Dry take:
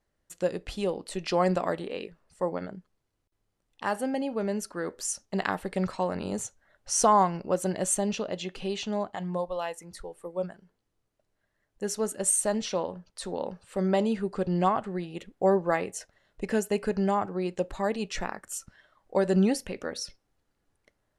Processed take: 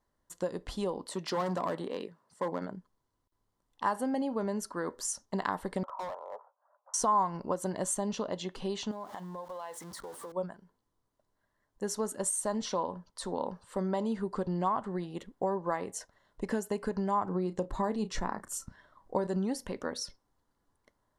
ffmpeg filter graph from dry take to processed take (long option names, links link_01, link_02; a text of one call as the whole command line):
ffmpeg -i in.wav -filter_complex "[0:a]asettb=1/sr,asplit=3[link_01][link_02][link_03];[link_01]atrim=end=1.064[link_04];[link_02]atrim=start=1.06:end=2.71,asetpts=PTS-STARTPTS,afade=type=in:duration=0.004:curve=qsin,afade=type=out:start_time=1.646:duration=0.004:curve=qsin,asoftclip=type=hard:threshold=-25dB,highpass=frequency=110:width=0.5412,highpass=frequency=110:width=1.3066[link_05];[link_03]atrim=start=2.706[link_06];[link_04][link_05]acrossfade=duration=0.004:curve1=hsin:curve2=qsin[link_07];[link_07][link_06]acrossfade=duration=0.004:curve1=qsin:curve2=hsin,asettb=1/sr,asplit=3[link_08][link_09][link_10];[link_08]atrim=end=5.834[link_11];[link_09]atrim=start=5.83:end=6.94,asetpts=PTS-STARTPTS,afade=type=in:duration=0.004:curve=qsin,afade=type=out:start_time=1.106:duration=0.004:curve=qsin,asuperpass=centerf=830:order=8:qfactor=1.1,asoftclip=type=hard:threshold=-36dB[link_12];[link_10]atrim=start=6.936[link_13];[link_11][link_12]acrossfade=duration=0.004:curve1=hsin:curve2=qsin[link_14];[link_14][link_13]acrossfade=duration=0.004:curve1=qsin:curve2=hsin,asettb=1/sr,asplit=3[link_15][link_16][link_17];[link_15]atrim=end=8.914[link_18];[link_16]atrim=start=8.91:end=10.32,asetpts=PTS-STARTPTS,afade=type=in:duration=0.004:curve=qsin,afade=type=out:start_time=1.406:duration=0.004:curve=qsin,aeval=exprs='val(0)+0.5*0.00841*sgn(val(0))':channel_layout=same,highpass=frequency=200:poles=1,acompressor=threshold=-38dB:ratio=6:attack=3.2:release=140:knee=1:detection=peak[link_19];[link_17]atrim=start=10.316[link_20];[link_18][link_19]acrossfade=duration=0.004:curve1=hsin:curve2=qsin[link_21];[link_21][link_20]acrossfade=duration=0.004:curve1=qsin:curve2=hsin,asettb=1/sr,asplit=3[link_22][link_23][link_24];[link_22]atrim=end=17.264[link_25];[link_23]atrim=start=17.26:end=19.27,asetpts=PTS-STARTPTS,afade=type=in:duration=0.004:curve=qsin,afade=type=out:start_time=2.006:duration=0.004:curve=qsin,lowshelf=frequency=420:gain=7.5,bandreject=frequency=3100:width=29,asplit=2[link_26][link_27];[link_27]adelay=33,volume=-13dB[link_28];[link_26][link_28]amix=inputs=2:normalize=0,atrim=end_sample=88641[link_29];[link_24]atrim=start=19.266[link_30];[link_25][link_29]acrossfade=duration=0.004:curve1=hsin:curve2=qsin[link_31];[link_31][link_30]acrossfade=duration=0.004:curve1=qsin:curve2=hsin,acompressor=threshold=-27dB:ratio=6,equalizer=frequency=250:width_type=o:width=0.33:gain=4,equalizer=frequency=1000:width_type=o:width=0.33:gain=11,equalizer=frequency=2500:width_type=o:width=0.33:gain=-10,volume=-2dB" out.wav